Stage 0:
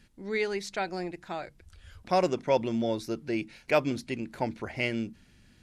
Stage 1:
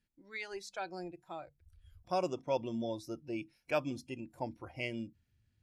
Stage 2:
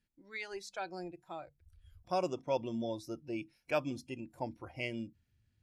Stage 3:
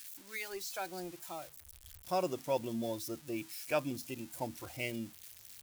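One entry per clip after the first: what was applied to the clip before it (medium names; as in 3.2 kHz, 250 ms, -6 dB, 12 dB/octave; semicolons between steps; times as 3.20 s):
spectral noise reduction 15 dB; trim -8 dB
no audible change
zero-crossing glitches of -37.5 dBFS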